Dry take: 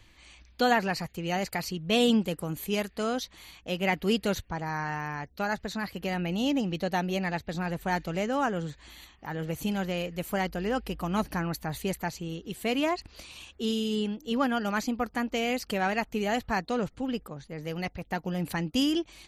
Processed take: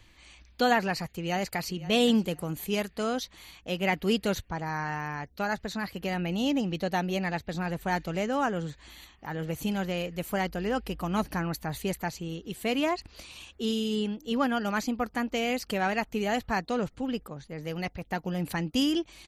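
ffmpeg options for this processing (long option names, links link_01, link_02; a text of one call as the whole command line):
ffmpeg -i in.wav -filter_complex "[0:a]asplit=2[link_01][link_02];[link_02]afade=type=in:start_time=1.07:duration=0.01,afade=type=out:start_time=1.88:duration=0.01,aecho=0:1:520|1040:0.133352|0.033338[link_03];[link_01][link_03]amix=inputs=2:normalize=0" out.wav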